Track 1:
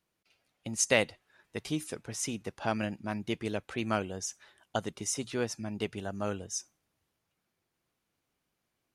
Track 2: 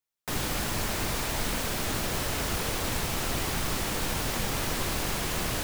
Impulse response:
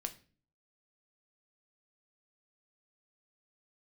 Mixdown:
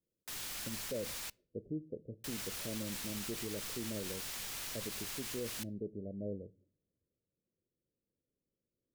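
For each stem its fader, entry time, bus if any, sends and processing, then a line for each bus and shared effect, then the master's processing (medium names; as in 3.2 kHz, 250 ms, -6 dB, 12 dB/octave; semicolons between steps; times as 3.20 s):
0.0 dB, 0.00 s, send -6 dB, steep low-pass 570 Hz 72 dB/octave
-17.0 dB, 0.00 s, muted 1.30–2.24 s, send -15.5 dB, none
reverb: on, RT60 0.40 s, pre-delay 4 ms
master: tilt shelf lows -8.5 dB, about 1.3 kHz; peak limiter -30 dBFS, peak gain reduction 9.5 dB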